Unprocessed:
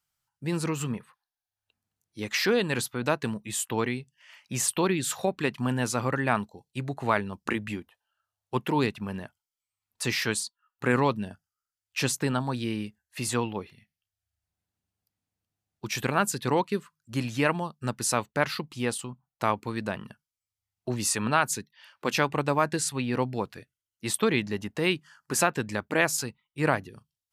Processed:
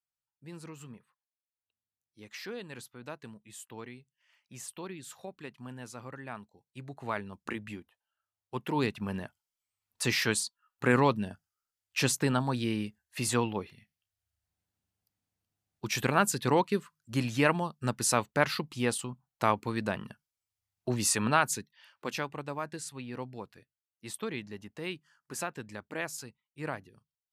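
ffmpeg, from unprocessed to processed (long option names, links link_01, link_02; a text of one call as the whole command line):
ffmpeg -i in.wav -af "volume=-0.5dB,afade=type=in:start_time=6.4:duration=0.94:silence=0.375837,afade=type=in:start_time=8.58:duration=0.52:silence=0.421697,afade=type=out:start_time=21.2:duration=1.13:silence=0.266073" out.wav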